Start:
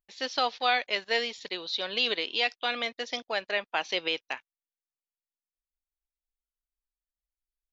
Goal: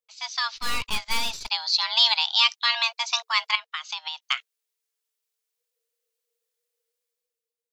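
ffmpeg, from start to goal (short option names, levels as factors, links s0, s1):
-filter_complex "[0:a]afreqshift=450,tiltshelf=f=1500:g=-6,asplit=3[s0][s1][s2];[s0]afade=t=out:st=0.56:d=0.02[s3];[s1]aeval=exprs='(tanh(31.6*val(0)+0.55)-tanh(0.55))/31.6':c=same,afade=t=in:st=0.56:d=0.02,afade=t=out:st=1.48:d=0.02[s4];[s2]afade=t=in:st=1.48:d=0.02[s5];[s3][s4][s5]amix=inputs=3:normalize=0,asettb=1/sr,asplit=3[s6][s7][s8];[s6]atrim=end=3.554[s9];[s7]atrim=start=3.55:end=4.22,asetpts=PTS-STARTPTS,afade=t=in:d=0.004:c=qsin,afade=t=out:st=0.666:d=0.004:c=qsin,acompressor=threshold=0.0178:ratio=16[s10];[s8]atrim=start=4.216[s11];[s9][s10]acrossfade=d=0.004:c1=hsin:c2=qsin[s12];[s12][s11]acrossfade=d=0.004:c1=qsin:c2=hsin,lowshelf=f=160:g=11.5,dynaudnorm=f=100:g=13:m=3.76,volume=0.668"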